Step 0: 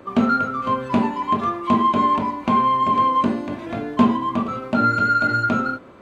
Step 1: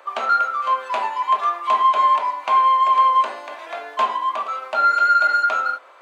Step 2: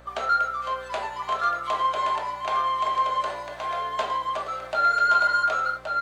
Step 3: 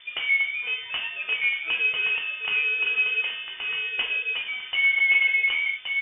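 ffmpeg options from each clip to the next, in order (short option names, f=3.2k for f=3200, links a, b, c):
-af "highpass=f=650:w=0.5412,highpass=f=650:w=1.3066,volume=3dB"
-af "equalizer=f=250:t=o:w=0.67:g=-7,equalizer=f=1k:t=o:w=0.67:g=-10,equalizer=f=2.5k:t=o:w=0.67:g=-7,aeval=exprs='val(0)+0.00282*(sin(2*PI*60*n/s)+sin(2*PI*2*60*n/s)/2+sin(2*PI*3*60*n/s)/3+sin(2*PI*4*60*n/s)/4+sin(2*PI*5*60*n/s)/5)':c=same,aecho=1:1:1123:0.562"
-af "lowpass=f=3.1k:t=q:w=0.5098,lowpass=f=3.1k:t=q:w=0.6013,lowpass=f=3.1k:t=q:w=0.9,lowpass=f=3.1k:t=q:w=2.563,afreqshift=-3600"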